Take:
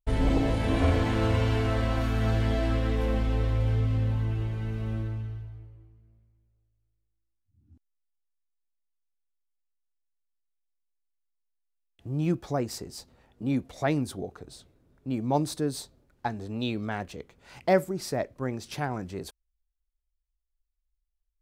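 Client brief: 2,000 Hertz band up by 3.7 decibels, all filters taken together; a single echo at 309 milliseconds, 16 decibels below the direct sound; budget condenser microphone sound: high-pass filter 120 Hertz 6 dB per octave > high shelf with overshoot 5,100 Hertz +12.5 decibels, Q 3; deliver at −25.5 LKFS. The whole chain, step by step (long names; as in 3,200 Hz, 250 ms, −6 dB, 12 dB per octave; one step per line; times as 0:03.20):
high-pass filter 120 Hz 6 dB per octave
parametric band 2,000 Hz +7 dB
high shelf with overshoot 5,100 Hz +12.5 dB, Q 3
single-tap delay 309 ms −16 dB
level +3 dB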